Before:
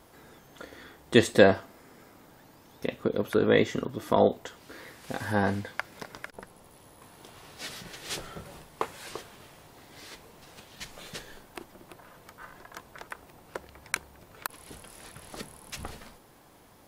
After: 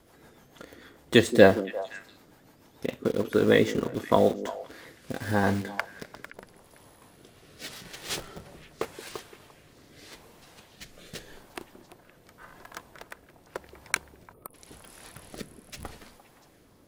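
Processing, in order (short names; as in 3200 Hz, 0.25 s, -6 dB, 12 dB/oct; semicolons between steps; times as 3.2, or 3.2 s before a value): rotary speaker horn 6.7 Hz, later 0.85 Hz, at 4.11; in parallel at -6.5 dB: requantised 6-bit, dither none; on the sum: delay with a stepping band-pass 0.173 s, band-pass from 300 Hz, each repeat 1.4 oct, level -9.5 dB; spectral gain 14.33–14.54, 1300–8800 Hz -20 dB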